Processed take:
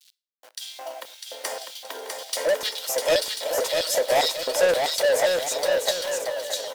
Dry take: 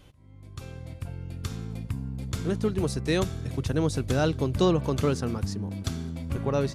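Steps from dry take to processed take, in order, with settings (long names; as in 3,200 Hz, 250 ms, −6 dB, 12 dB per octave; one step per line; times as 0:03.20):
turntable brake at the end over 1.04 s
Butterworth high-pass 230 Hz 96 dB per octave
comb filter 2.1 ms, depth 44%
leveller curve on the samples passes 1
formants moved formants +5 semitones
bit reduction 9 bits
auto-filter high-pass square 1.9 Hz 630–3,700 Hz
soft clipping −24 dBFS, distortion −5 dB
bouncing-ball delay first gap 650 ms, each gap 0.6×, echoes 5
on a send at −22 dB: convolution reverb RT60 0.35 s, pre-delay 34 ms
on the sum: level +6.5 dB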